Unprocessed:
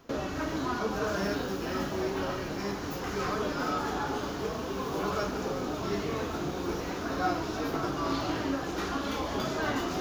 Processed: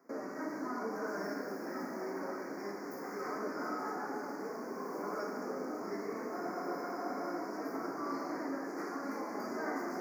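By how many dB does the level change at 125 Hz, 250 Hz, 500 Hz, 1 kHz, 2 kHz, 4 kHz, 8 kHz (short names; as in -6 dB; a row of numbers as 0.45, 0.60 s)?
-18.5, -7.0, -6.5, -6.5, -7.5, -16.5, -11.0 dB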